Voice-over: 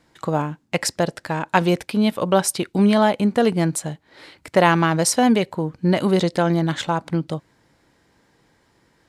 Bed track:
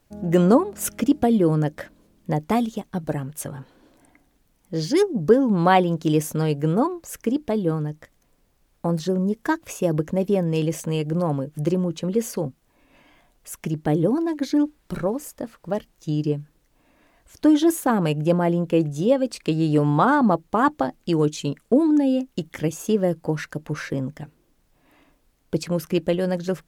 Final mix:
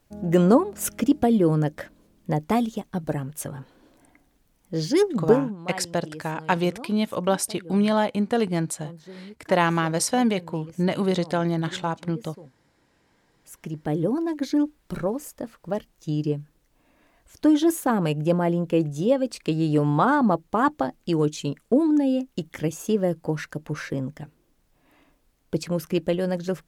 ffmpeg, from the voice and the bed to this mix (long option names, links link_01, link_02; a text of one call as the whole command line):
ffmpeg -i stem1.wav -i stem2.wav -filter_complex "[0:a]adelay=4950,volume=-5dB[link_01];[1:a]volume=16.5dB,afade=type=out:start_time=5.28:duration=0.28:silence=0.11885,afade=type=in:start_time=13.07:duration=1.25:silence=0.133352[link_02];[link_01][link_02]amix=inputs=2:normalize=0" out.wav